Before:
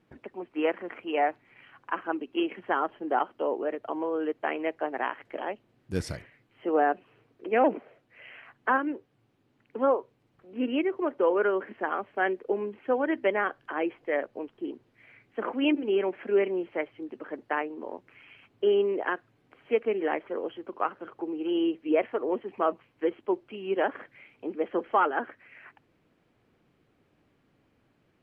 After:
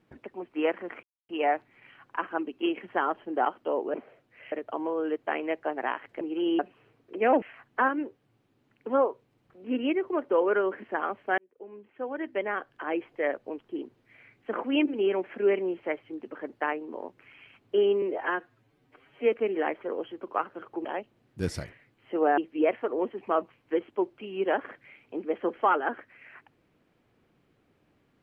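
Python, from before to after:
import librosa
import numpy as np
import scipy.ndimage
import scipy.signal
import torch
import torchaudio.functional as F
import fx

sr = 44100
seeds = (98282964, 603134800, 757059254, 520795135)

y = fx.edit(x, sr, fx.insert_silence(at_s=1.03, length_s=0.26),
    fx.swap(start_s=5.37, length_s=1.53, other_s=21.3, other_length_s=0.38),
    fx.move(start_s=7.73, length_s=0.58, to_s=3.68),
    fx.fade_in_span(start_s=12.27, length_s=1.74),
    fx.stretch_span(start_s=18.91, length_s=0.87, factor=1.5), tone=tone)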